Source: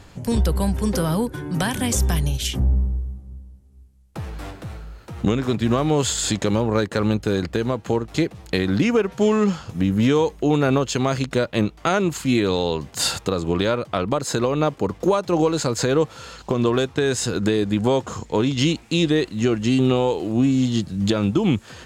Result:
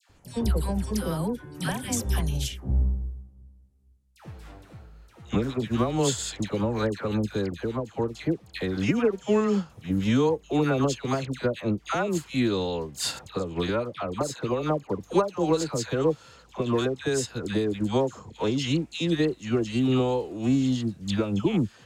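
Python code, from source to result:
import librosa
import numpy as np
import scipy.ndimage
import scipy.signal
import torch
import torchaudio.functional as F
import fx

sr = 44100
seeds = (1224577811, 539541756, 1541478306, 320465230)

y = fx.dispersion(x, sr, late='lows', ms=97.0, hz=1200.0)
y = fx.upward_expand(y, sr, threshold_db=-32.0, expansion=1.5)
y = y * 10.0 ** (-3.0 / 20.0)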